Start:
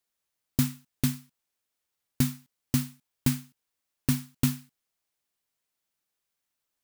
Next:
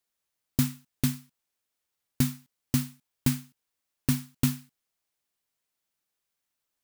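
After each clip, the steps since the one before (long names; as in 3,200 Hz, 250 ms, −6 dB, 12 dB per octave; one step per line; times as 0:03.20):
no processing that can be heard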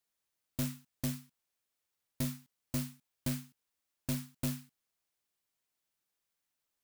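soft clipping −26.5 dBFS, distortion −6 dB
level −2.5 dB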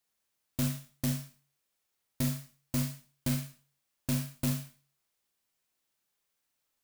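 four-comb reverb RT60 0.38 s, combs from 29 ms, DRR 4 dB
level +3 dB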